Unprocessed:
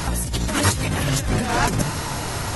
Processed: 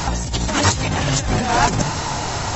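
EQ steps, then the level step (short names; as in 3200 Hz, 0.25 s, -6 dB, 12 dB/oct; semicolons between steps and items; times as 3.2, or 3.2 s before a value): brick-wall FIR low-pass 7800 Hz; bell 810 Hz +6 dB 0.59 oct; high shelf 5400 Hz +6.5 dB; +1.5 dB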